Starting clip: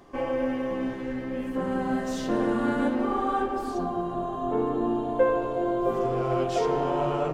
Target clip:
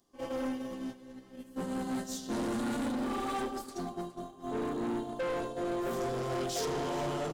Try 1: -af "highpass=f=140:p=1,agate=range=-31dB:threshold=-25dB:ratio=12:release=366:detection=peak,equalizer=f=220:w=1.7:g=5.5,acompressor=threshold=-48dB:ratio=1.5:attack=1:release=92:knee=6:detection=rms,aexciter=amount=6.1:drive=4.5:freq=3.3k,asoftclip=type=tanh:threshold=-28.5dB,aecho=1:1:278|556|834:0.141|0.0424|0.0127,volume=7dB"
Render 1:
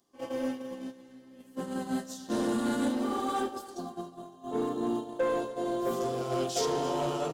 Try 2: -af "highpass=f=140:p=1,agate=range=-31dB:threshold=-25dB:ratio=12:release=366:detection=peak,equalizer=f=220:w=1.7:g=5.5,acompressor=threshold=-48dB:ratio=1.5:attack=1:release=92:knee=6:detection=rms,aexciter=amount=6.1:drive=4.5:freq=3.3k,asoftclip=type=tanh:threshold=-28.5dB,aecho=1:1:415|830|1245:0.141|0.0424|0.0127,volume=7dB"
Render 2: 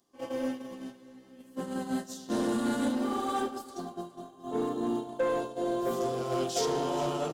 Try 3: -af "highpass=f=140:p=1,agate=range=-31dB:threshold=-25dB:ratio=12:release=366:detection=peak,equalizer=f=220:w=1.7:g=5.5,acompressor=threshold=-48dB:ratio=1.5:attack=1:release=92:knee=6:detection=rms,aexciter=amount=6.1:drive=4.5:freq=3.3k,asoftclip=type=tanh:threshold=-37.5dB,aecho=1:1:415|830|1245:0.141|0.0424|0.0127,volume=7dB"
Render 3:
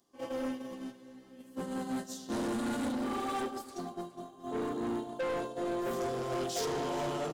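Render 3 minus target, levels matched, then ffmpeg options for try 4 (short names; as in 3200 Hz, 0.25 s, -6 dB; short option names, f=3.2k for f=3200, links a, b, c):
125 Hz band -2.0 dB
-af "agate=range=-31dB:threshold=-25dB:ratio=12:release=366:detection=peak,equalizer=f=220:w=1.7:g=5.5,acompressor=threshold=-48dB:ratio=1.5:attack=1:release=92:knee=6:detection=rms,aexciter=amount=6.1:drive=4.5:freq=3.3k,asoftclip=type=tanh:threshold=-37.5dB,aecho=1:1:415|830|1245:0.141|0.0424|0.0127,volume=7dB"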